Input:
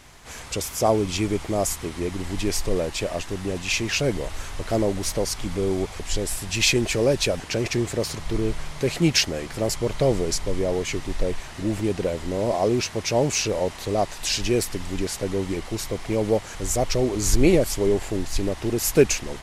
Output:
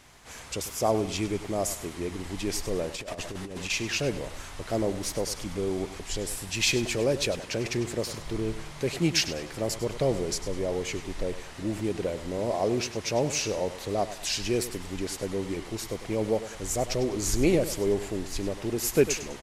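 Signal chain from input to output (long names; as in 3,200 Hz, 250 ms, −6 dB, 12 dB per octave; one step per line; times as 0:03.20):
low-shelf EQ 69 Hz −6 dB
repeating echo 100 ms, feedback 36%, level −13.5 dB
0:02.94–0:03.70: compressor whose output falls as the input rises −30 dBFS, ratio −0.5
level −5 dB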